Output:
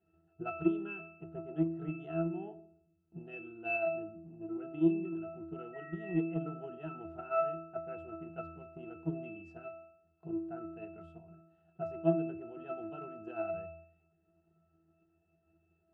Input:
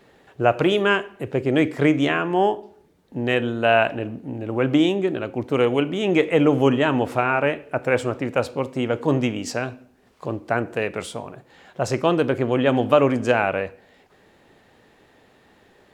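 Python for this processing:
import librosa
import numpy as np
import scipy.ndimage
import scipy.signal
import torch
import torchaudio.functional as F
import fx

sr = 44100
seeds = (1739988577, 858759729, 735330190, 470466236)

y = fx.octave_resonator(x, sr, note='E', decay_s=0.69)
y = fx.transient(y, sr, attack_db=7, sustain_db=3)
y = fx.dmg_tone(y, sr, hz=1900.0, level_db=-51.0, at=(5.73, 6.18), fade=0.02)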